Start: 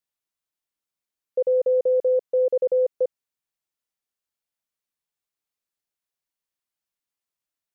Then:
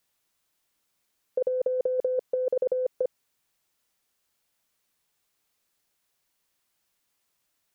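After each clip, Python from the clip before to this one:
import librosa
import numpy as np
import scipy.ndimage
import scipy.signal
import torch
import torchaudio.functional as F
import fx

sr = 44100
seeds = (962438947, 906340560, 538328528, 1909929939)

y = fx.over_compress(x, sr, threshold_db=-26.0, ratio=-0.5)
y = y * librosa.db_to_amplitude(3.5)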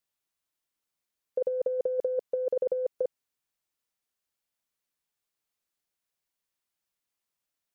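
y = fx.upward_expand(x, sr, threshold_db=-43.0, expansion=1.5)
y = y * librosa.db_to_amplitude(-1.5)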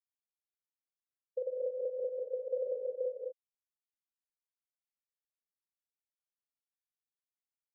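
y = fx.rev_gated(x, sr, seeds[0], gate_ms=270, shape='rising', drr_db=-1.0)
y = fx.spectral_expand(y, sr, expansion=1.5)
y = y * librosa.db_to_amplitude(-7.5)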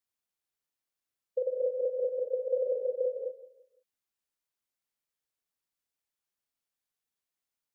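y = fx.echo_feedback(x, sr, ms=170, feedback_pct=32, wet_db=-15)
y = y * librosa.db_to_amplitude(5.5)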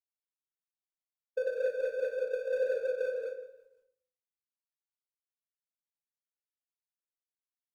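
y = scipy.signal.medfilt(x, 41)
y = fx.room_shoebox(y, sr, seeds[1], volume_m3=61.0, walls='mixed', distance_m=0.51)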